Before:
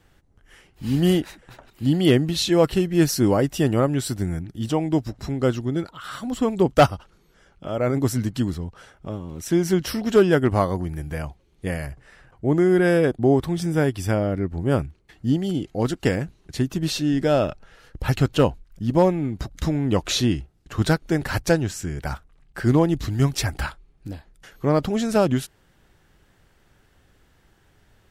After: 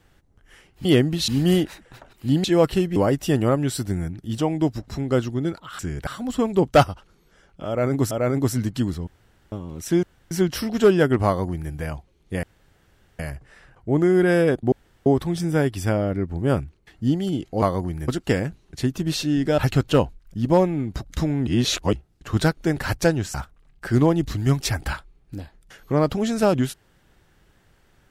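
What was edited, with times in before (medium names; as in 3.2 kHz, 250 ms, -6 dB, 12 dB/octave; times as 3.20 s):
2.01–2.44 s: move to 0.85 s
2.96–3.27 s: delete
7.71–8.14 s: loop, 2 plays
8.67–9.12 s: room tone
9.63 s: insert room tone 0.28 s
10.58–11.04 s: copy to 15.84 s
11.75 s: insert room tone 0.76 s
13.28 s: insert room tone 0.34 s
17.34–18.03 s: delete
19.92–20.38 s: reverse
21.79–22.07 s: move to 6.10 s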